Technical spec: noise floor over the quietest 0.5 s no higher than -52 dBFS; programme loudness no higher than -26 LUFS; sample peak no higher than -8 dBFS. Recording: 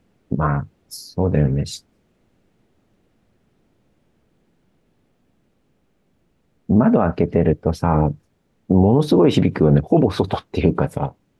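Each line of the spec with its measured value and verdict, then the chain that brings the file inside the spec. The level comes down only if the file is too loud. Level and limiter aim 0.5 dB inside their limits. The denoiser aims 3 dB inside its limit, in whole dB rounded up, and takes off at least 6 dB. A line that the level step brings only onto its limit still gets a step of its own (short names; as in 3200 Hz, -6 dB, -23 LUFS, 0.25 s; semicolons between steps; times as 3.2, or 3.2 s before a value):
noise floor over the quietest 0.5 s -64 dBFS: OK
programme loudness -18.5 LUFS: fail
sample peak -4.0 dBFS: fail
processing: gain -8 dB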